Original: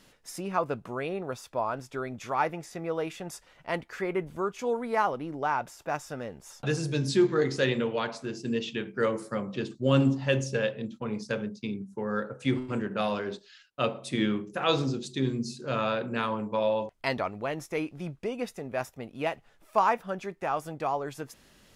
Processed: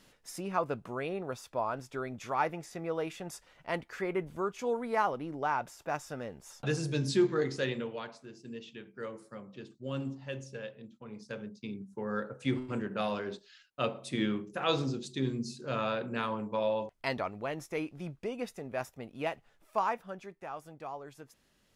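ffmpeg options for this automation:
ffmpeg -i in.wav -af "volume=7dB,afade=type=out:start_time=7.11:duration=1.12:silence=0.281838,afade=type=in:start_time=11.05:duration=1.05:silence=0.316228,afade=type=out:start_time=19.3:duration=1.18:silence=0.398107" out.wav

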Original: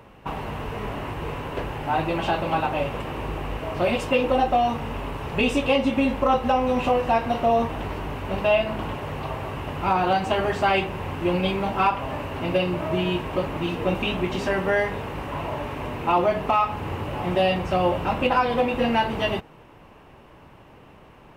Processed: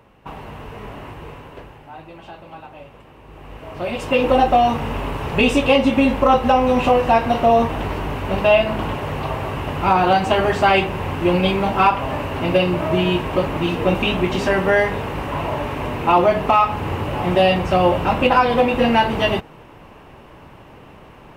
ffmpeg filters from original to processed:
ffmpeg -i in.wav -af "volume=17dB,afade=type=out:start_time=1.07:duration=0.84:silence=0.281838,afade=type=in:start_time=3.24:duration=0.7:silence=0.237137,afade=type=in:start_time=3.94:duration=0.35:silence=0.398107" out.wav

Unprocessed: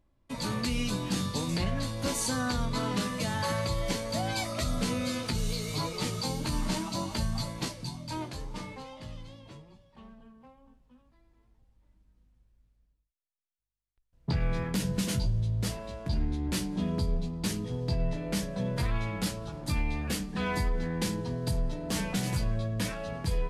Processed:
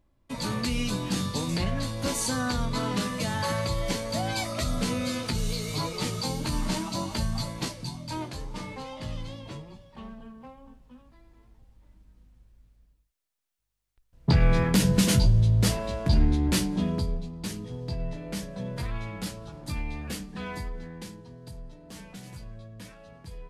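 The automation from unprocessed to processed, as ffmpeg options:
ffmpeg -i in.wav -af "volume=8.5dB,afade=type=in:start_time=8.58:duration=0.66:silence=0.473151,afade=type=out:start_time=16.27:duration=0.96:silence=0.266073,afade=type=out:start_time=20.14:duration=1.08:silence=0.316228" out.wav

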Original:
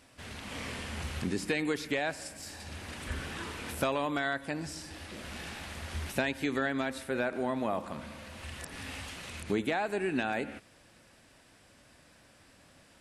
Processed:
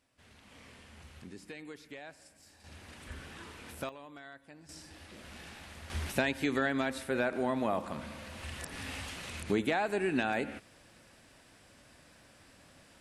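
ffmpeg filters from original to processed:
ffmpeg -i in.wav -af "asetnsamples=nb_out_samples=441:pad=0,asendcmd='2.64 volume volume -8.5dB;3.89 volume volume -18dB;4.69 volume volume -7dB;5.9 volume volume 0.5dB',volume=-15.5dB" out.wav

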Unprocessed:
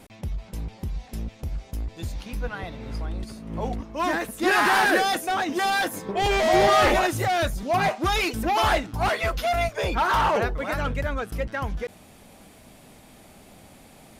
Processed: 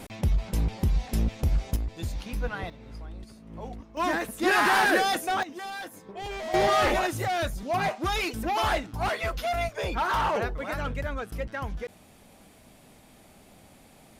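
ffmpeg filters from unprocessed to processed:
ffmpeg -i in.wav -af "asetnsamples=nb_out_samples=441:pad=0,asendcmd='1.76 volume volume -0.5dB;2.7 volume volume -10dB;3.97 volume volume -2dB;5.43 volume volume -13.5dB;6.54 volume volume -4.5dB',volume=6.5dB" out.wav

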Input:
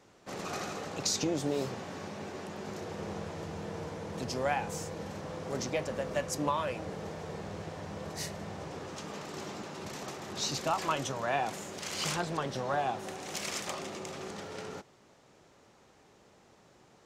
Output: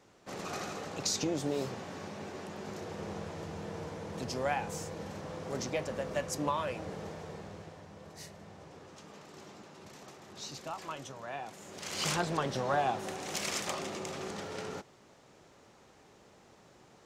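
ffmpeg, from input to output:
ffmpeg -i in.wav -af "volume=10dB,afade=type=out:start_time=6.99:duration=0.88:silence=0.375837,afade=type=in:start_time=11.57:duration=0.56:silence=0.266073" out.wav

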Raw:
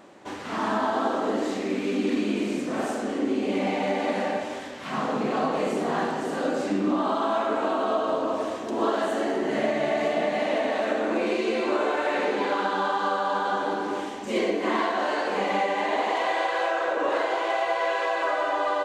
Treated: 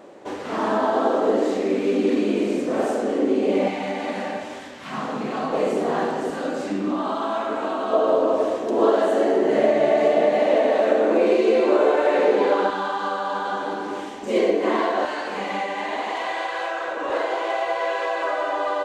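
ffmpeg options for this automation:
ffmpeg -i in.wav -af "asetnsamples=nb_out_samples=441:pad=0,asendcmd='3.68 equalizer g -2.5;5.52 equalizer g 6;6.3 equalizer g -0.5;7.93 equalizer g 10.5;12.7 equalizer g -0.5;14.23 equalizer g 7.5;15.05 equalizer g -4;17.1 equalizer g 2.5',equalizer=frequency=480:width_type=o:width=1.2:gain=9.5" out.wav

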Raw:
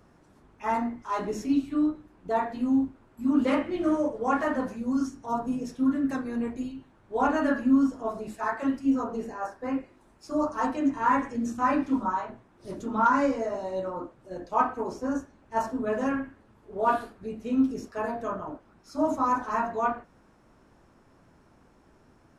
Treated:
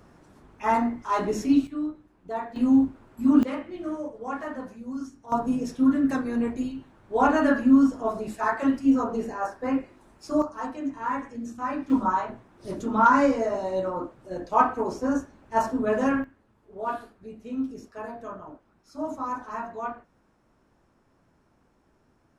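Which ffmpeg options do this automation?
ffmpeg -i in.wav -af "asetnsamples=nb_out_samples=441:pad=0,asendcmd='1.67 volume volume -5dB;2.56 volume volume 5dB;3.43 volume volume -7dB;5.32 volume volume 4dB;10.42 volume volume -5.5dB;11.9 volume volume 4dB;16.24 volume volume -6dB',volume=4.5dB" out.wav

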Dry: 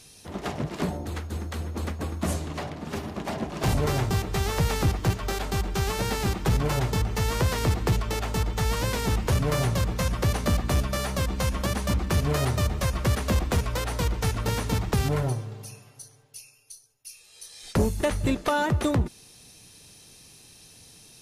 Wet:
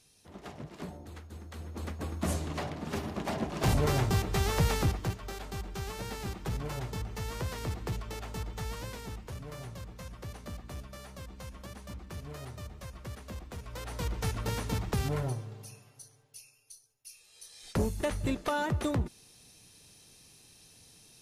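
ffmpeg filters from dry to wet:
ffmpeg -i in.wav -af "volume=9.5dB,afade=type=in:start_time=1.43:duration=1.08:silence=0.281838,afade=type=out:start_time=4.69:duration=0.48:silence=0.354813,afade=type=out:start_time=8.59:duration=0.67:silence=0.446684,afade=type=in:start_time=13.59:duration=0.6:silence=0.251189" out.wav

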